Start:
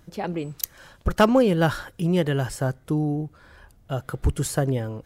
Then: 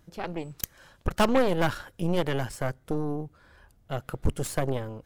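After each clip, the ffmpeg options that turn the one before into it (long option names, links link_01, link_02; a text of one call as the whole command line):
ffmpeg -i in.wav -af "aeval=exprs='0.447*(cos(1*acos(clip(val(0)/0.447,-1,1)))-cos(1*PI/2))+0.1*(cos(6*acos(clip(val(0)/0.447,-1,1)))-cos(6*PI/2))':channel_layout=same,volume=-6dB" out.wav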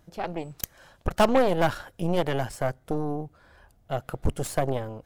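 ffmpeg -i in.wav -af "equalizer=frequency=700:width_type=o:width=0.61:gain=6" out.wav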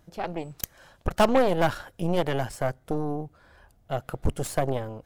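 ffmpeg -i in.wav -af anull out.wav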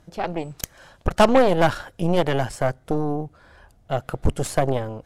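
ffmpeg -i in.wav -af "lowpass=11000,volume=5dB" out.wav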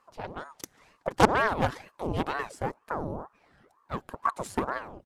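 ffmpeg -i in.wav -af "aecho=1:1:4.5:0.42,aeval=exprs='0.891*(cos(1*acos(clip(val(0)/0.891,-1,1)))-cos(1*PI/2))+0.224*(cos(3*acos(clip(val(0)/0.891,-1,1)))-cos(3*PI/2))+0.0355*(cos(5*acos(clip(val(0)/0.891,-1,1)))-cos(5*PI/2))':channel_layout=same,aeval=exprs='val(0)*sin(2*PI*620*n/s+620*0.85/2.1*sin(2*PI*2.1*n/s))':channel_layout=same,volume=-2dB" out.wav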